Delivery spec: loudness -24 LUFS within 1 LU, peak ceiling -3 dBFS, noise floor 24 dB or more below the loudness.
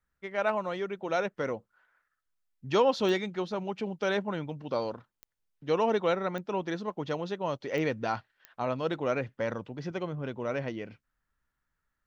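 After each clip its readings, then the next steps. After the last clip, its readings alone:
clicks 5; loudness -31.5 LUFS; peak -12.0 dBFS; loudness target -24.0 LUFS
-> de-click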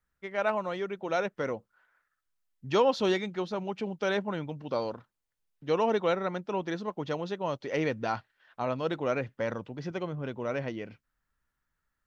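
clicks 0; loudness -31.5 LUFS; peak -12.0 dBFS; loudness target -24.0 LUFS
-> gain +7.5 dB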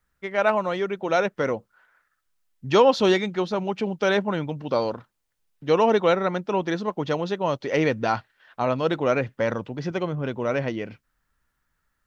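loudness -24.0 LUFS; peak -4.5 dBFS; noise floor -76 dBFS

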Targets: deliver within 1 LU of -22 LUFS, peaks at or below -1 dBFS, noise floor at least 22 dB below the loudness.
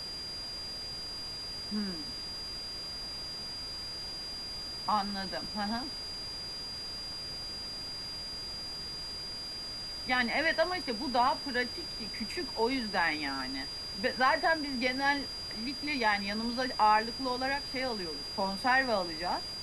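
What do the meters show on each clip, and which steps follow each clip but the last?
steady tone 4800 Hz; tone level -38 dBFS; noise floor -40 dBFS; noise floor target -55 dBFS; loudness -32.5 LUFS; peak -14.5 dBFS; loudness target -22.0 LUFS
-> notch 4800 Hz, Q 30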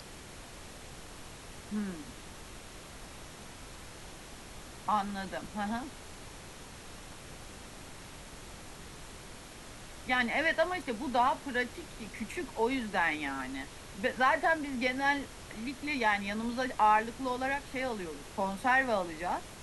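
steady tone none; noise floor -49 dBFS; noise floor target -54 dBFS
-> noise print and reduce 6 dB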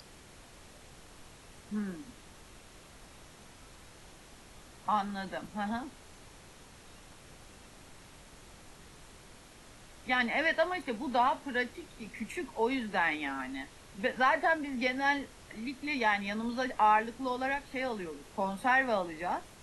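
noise floor -55 dBFS; loudness -32.0 LUFS; peak -14.5 dBFS; loudness target -22.0 LUFS
-> gain +10 dB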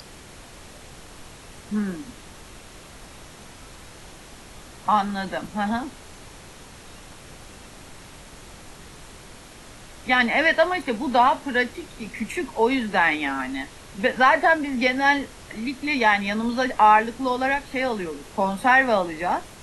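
loudness -22.0 LUFS; peak -4.5 dBFS; noise floor -45 dBFS

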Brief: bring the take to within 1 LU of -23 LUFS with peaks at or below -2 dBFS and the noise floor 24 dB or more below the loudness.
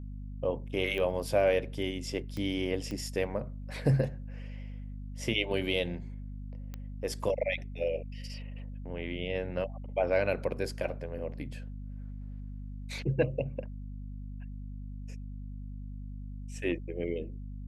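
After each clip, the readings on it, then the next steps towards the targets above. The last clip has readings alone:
clicks 4; hum 50 Hz; harmonics up to 250 Hz; hum level -38 dBFS; loudness -34.5 LUFS; peak -14.0 dBFS; loudness target -23.0 LUFS
-> de-click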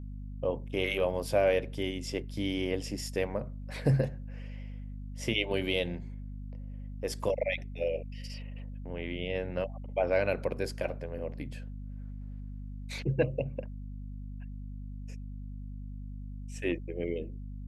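clicks 0; hum 50 Hz; harmonics up to 250 Hz; hum level -38 dBFS
-> notches 50/100/150/200/250 Hz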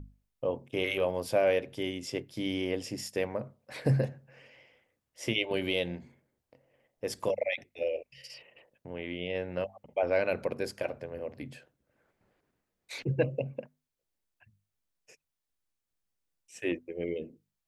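hum none; loudness -33.0 LUFS; peak -14.5 dBFS; loudness target -23.0 LUFS
-> gain +10 dB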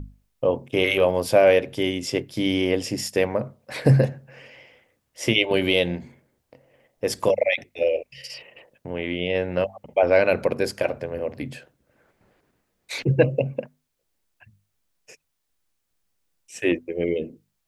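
loudness -23.0 LUFS; peak -4.5 dBFS; noise floor -75 dBFS

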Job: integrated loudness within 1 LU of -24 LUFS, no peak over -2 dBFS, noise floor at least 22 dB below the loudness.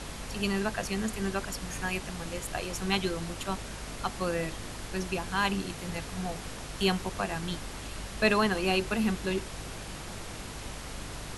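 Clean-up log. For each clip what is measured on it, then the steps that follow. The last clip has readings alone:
hum 50 Hz; harmonics up to 250 Hz; hum level -43 dBFS; noise floor -41 dBFS; noise floor target -55 dBFS; loudness -32.5 LUFS; peak -12.0 dBFS; loudness target -24.0 LUFS
-> notches 50/100/150/200/250 Hz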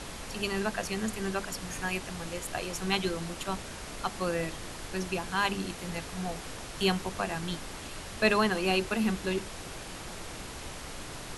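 hum none; noise floor -42 dBFS; noise floor target -55 dBFS
-> noise print and reduce 13 dB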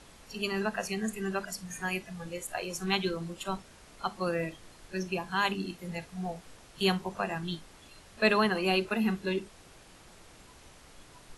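noise floor -55 dBFS; loudness -32.0 LUFS; peak -11.5 dBFS; loudness target -24.0 LUFS
-> gain +8 dB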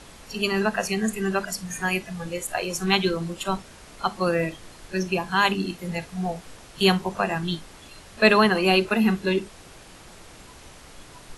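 loudness -24.0 LUFS; peak -3.5 dBFS; noise floor -47 dBFS

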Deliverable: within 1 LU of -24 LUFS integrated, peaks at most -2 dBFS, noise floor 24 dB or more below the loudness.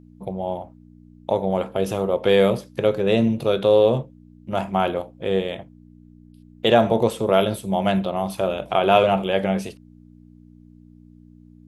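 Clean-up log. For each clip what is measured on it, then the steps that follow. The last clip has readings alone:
hum 60 Hz; harmonics up to 300 Hz; hum level -45 dBFS; loudness -21.0 LUFS; peak -3.0 dBFS; loudness target -24.0 LUFS
-> de-hum 60 Hz, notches 5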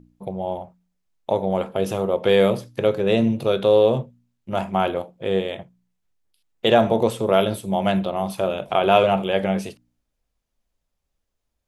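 hum none; loudness -21.0 LUFS; peak -3.0 dBFS; loudness target -24.0 LUFS
-> gain -3 dB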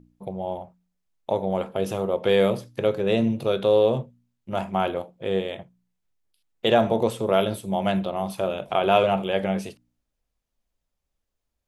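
loudness -24.0 LUFS; peak -6.0 dBFS; noise floor -80 dBFS

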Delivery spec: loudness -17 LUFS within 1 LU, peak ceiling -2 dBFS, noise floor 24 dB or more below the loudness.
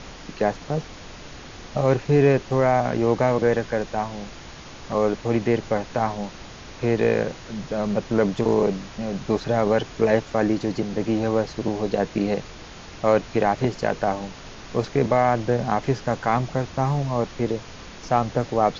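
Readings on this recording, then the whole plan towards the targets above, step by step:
noise floor -41 dBFS; noise floor target -48 dBFS; loudness -23.5 LUFS; peak -6.0 dBFS; loudness target -17.0 LUFS
-> noise print and reduce 7 dB; gain +6.5 dB; limiter -2 dBFS

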